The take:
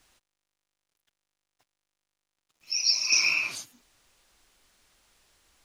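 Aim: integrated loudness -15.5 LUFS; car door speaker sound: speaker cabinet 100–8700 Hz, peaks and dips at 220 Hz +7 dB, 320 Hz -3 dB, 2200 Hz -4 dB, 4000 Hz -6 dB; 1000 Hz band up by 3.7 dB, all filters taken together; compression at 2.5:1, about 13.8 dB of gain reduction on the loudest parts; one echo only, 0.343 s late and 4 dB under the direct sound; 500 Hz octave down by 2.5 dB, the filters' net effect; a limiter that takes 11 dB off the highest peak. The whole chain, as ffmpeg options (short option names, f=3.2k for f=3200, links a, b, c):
-af "equalizer=f=500:t=o:g=-5.5,equalizer=f=1k:t=o:g=5.5,acompressor=threshold=-40dB:ratio=2.5,alimiter=level_in=10.5dB:limit=-24dB:level=0:latency=1,volume=-10.5dB,highpass=100,equalizer=f=220:t=q:w=4:g=7,equalizer=f=320:t=q:w=4:g=-3,equalizer=f=2.2k:t=q:w=4:g=-4,equalizer=f=4k:t=q:w=4:g=-6,lowpass=f=8.7k:w=0.5412,lowpass=f=8.7k:w=1.3066,aecho=1:1:343:0.631,volume=27.5dB"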